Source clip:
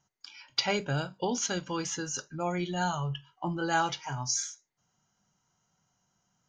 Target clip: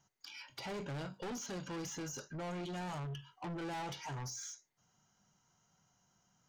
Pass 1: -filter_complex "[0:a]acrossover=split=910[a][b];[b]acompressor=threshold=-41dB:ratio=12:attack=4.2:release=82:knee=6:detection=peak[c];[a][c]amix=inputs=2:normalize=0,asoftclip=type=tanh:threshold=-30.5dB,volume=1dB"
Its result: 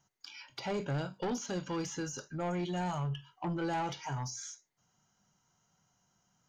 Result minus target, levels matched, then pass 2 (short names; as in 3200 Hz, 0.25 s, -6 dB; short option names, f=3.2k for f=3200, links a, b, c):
soft clip: distortion -7 dB
-filter_complex "[0:a]acrossover=split=910[a][b];[b]acompressor=threshold=-41dB:ratio=12:attack=4.2:release=82:knee=6:detection=peak[c];[a][c]amix=inputs=2:normalize=0,asoftclip=type=tanh:threshold=-40.5dB,volume=1dB"